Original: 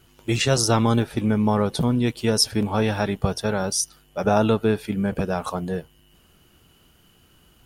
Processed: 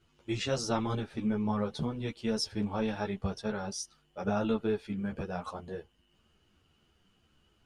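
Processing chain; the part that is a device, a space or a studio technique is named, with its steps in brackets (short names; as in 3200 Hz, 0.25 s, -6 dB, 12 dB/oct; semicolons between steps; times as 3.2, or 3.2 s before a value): string-machine ensemble chorus (ensemble effect; LPF 6200 Hz 12 dB/oct); gain -8.5 dB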